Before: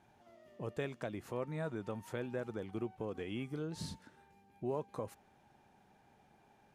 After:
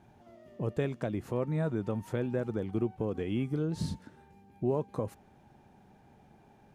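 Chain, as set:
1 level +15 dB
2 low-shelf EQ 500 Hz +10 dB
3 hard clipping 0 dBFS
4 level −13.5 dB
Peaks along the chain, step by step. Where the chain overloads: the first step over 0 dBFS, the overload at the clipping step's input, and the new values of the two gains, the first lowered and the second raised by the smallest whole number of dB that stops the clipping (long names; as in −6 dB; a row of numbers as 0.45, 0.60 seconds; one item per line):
−9.5, −4.0, −4.0, −17.5 dBFS
no step passes full scale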